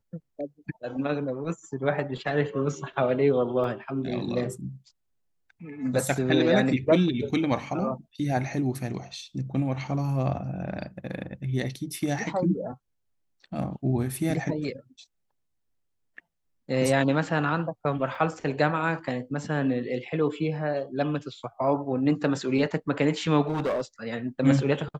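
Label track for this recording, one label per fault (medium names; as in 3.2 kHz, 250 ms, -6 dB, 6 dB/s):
3.640000	3.640000	dropout 3.4 ms
18.150000	18.150000	dropout 2.8 ms
23.420000	23.810000	clipped -23 dBFS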